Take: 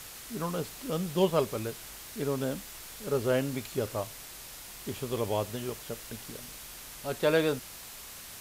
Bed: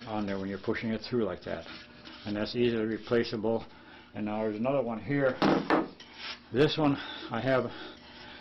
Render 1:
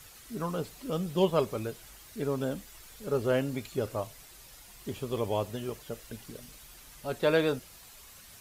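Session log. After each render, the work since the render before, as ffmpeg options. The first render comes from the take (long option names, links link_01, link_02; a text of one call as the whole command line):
ffmpeg -i in.wav -af "afftdn=noise_reduction=9:noise_floor=-46" out.wav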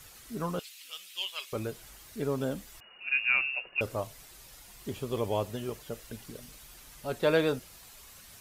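ffmpeg -i in.wav -filter_complex "[0:a]asettb=1/sr,asplit=3[link_01][link_02][link_03];[link_01]atrim=end=0.594[link_04];[link_02]atrim=start=0.59:end=1.53,asetpts=PTS-STARTPTS,afade=type=in:duration=0.004:curve=qsin,afade=type=out:start_time=0.936:duration=0.004:curve=qsin,highpass=frequency=2700:width_type=q:width=2.1[link_05];[link_03]atrim=start=1.526[link_06];[link_04][link_05]acrossfade=duration=0.004:curve1=hsin:curve2=qsin[link_07];[link_07][link_06]acrossfade=duration=0.004:curve1=qsin:curve2=hsin,asettb=1/sr,asplit=3[link_08][link_09][link_10];[link_08]atrim=end=2.804[link_11];[link_09]atrim=start=2.8:end=3.81,asetpts=PTS-STARTPTS,afade=type=in:duration=0.004:curve=qsin,afade=type=out:start_time=1.006:duration=0.004:curve=qsin,lowpass=frequency=2500:width_type=q:width=0.5098,lowpass=frequency=2500:width_type=q:width=0.6013,lowpass=frequency=2500:width_type=q:width=0.9,lowpass=frequency=2500:width_type=q:width=2.563,afreqshift=-2900[link_12];[link_10]atrim=start=3.806[link_13];[link_11][link_12]acrossfade=duration=0.004:curve1=hsin:curve2=qsin[link_14];[link_14][link_13]acrossfade=duration=0.004:curve1=qsin:curve2=hsin" out.wav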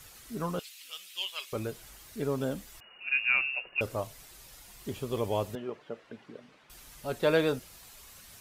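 ffmpeg -i in.wav -filter_complex "[0:a]asettb=1/sr,asplit=3[link_01][link_02][link_03];[link_01]atrim=end=5.554[link_04];[link_02]atrim=start=5.55:end=6.7,asetpts=PTS-STARTPTS,afade=type=in:duration=0.004:curve=qsin,afade=type=out:start_time=1.146:duration=0.004:curve=qsin,highpass=220,lowpass=2200[link_05];[link_03]atrim=start=6.696[link_06];[link_04][link_05]acrossfade=duration=0.004:curve1=hsin:curve2=qsin[link_07];[link_07][link_06]acrossfade=duration=0.004:curve1=qsin:curve2=hsin" out.wav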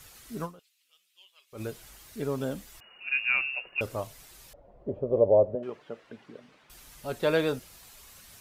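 ffmpeg -i in.wav -filter_complex "[0:a]asettb=1/sr,asplit=3[link_01][link_02][link_03];[link_01]atrim=end=4.534[link_04];[link_02]atrim=start=4.53:end=5.63,asetpts=PTS-STARTPTS,afade=type=in:duration=0.004:curve=qsin,afade=type=out:start_time=1.096:duration=0.004:curve=qsin,lowpass=frequency=580:width_type=q:width=6.6[link_05];[link_03]atrim=start=5.626[link_06];[link_04][link_05]acrossfade=duration=0.004:curve1=hsin:curve2=qsin[link_07];[link_07][link_06]acrossfade=duration=0.004:curve1=qsin:curve2=hsin,asplit=3[link_08][link_09][link_10];[link_08]atrim=end=0.86,asetpts=PTS-STARTPTS,afade=type=out:start_time=0.44:duration=0.42:curve=exp:silence=0.0794328[link_11];[link_09]atrim=start=0.86:end=1.19,asetpts=PTS-STARTPTS,volume=-22dB[link_12];[link_10]atrim=start=1.19,asetpts=PTS-STARTPTS,afade=type=in:duration=0.42:curve=exp:silence=0.0794328[link_13];[link_11][link_12][link_13]concat=n=3:v=0:a=1" out.wav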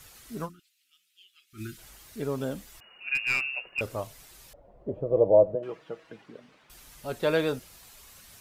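ffmpeg -i in.wav -filter_complex "[0:a]asplit=3[link_01][link_02][link_03];[link_01]afade=type=out:start_time=0.48:duration=0.02[link_04];[link_02]asuperstop=centerf=680:order=20:qfactor=0.77,afade=type=in:start_time=0.48:duration=0.02,afade=type=out:start_time=1.77:duration=0.02[link_05];[link_03]afade=type=in:start_time=1.77:duration=0.02[link_06];[link_04][link_05][link_06]amix=inputs=3:normalize=0,asettb=1/sr,asplit=3[link_07][link_08][link_09];[link_07]atrim=end=3.154[link_10];[link_08]atrim=start=3.15:end=3.96,asetpts=PTS-STARTPTS,afade=type=in:duration=0.004:curve=qsin,afade=type=out:start_time=0.806:duration=0.004:curve=qsin,aeval=exprs='clip(val(0),-1,0.0668)':channel_layout=same[link_11];[link_09]atrim=start=3.956[link_12];[link_10][link_11]acrossfade=duration=0.004:curve1=hsin:curve2=qsin[link_13];[link_13][link_12]acrossfade=duration=0.004:curve1=qsin:curve2=hsin,asettb=1/sr,asplit=3[link_14][link_15][link_16];[link_14]atrim=end=4.974[link_17];[link_15]atrim=start=4.97:end=6.22,asetpts=PTS-STARTPTS,afade=type=in:duration=0.004:curve=qsin,afade=type=out:start_time=1.246:duration=0.004:curve=qsin,aecho=1:1:6.2:0.65,atrim=end_sample=55125[link_18];[link_16]atrim=start=6.216[link_19];[link_17][link_18]acrossfade=duration=0.004:curve1=hsin:curve2=qsin[link_20];[link_20][link_19]acrossfade=duration=0.004:curve1=qsin:curve2=hsin" out.wav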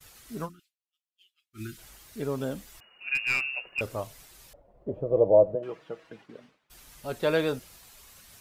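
ffmpeg -i in.wav -af "agate=range=-33dB:threshold=-50dB:ratio=3:detection=peak" out.wav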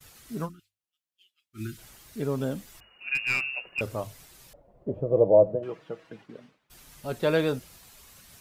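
ffmpeg -i in.wav -af "equalizer=frequency=140:width_type=o:width=2.3:gain=4.5,bandreject=frequency=50:width_type=h:width=6,bandreject=frequency=100:width_type=h:width=6" out.wav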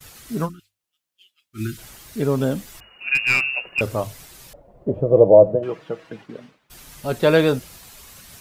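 ffmpeg -i in.wav -af "volume=8.5dB,alimiter=limit=-1dB:level=0:latency=1" out.wav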